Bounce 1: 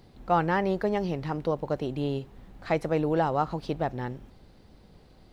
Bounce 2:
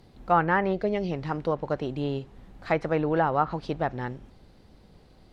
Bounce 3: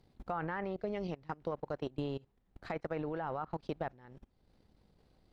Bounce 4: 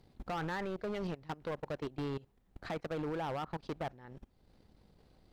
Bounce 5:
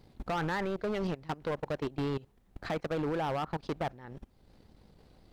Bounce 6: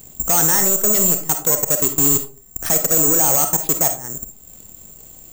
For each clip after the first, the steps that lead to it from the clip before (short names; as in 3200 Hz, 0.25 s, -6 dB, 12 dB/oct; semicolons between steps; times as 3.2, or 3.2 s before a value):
dynamic EQ 1500 Hz, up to +6 dB, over -41 dBFS, Q 1.1; spectral gain 0.73–1.11, 780–2000 Hz -11 dB; treble ducked by the level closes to 2600 Hz, closed at -18.5 dBFS
level quantiser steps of 15 dB; transient shaper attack +9 dB, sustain -7 dB; limiter -18 dBFS, peak gain reduction 8 dB; gain -8 dB
hard clip -37 dBFS, distortion -8 dB; gain +3.5 dB
vibrato 5.8 Hz 49 cents; gain +5 dB
careless resampling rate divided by 6×, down none, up zero stuff; on a send at -6 dB: reverb RT60 0.35 s, pre-delay 10 ms; on the sum: gain +8.5 dB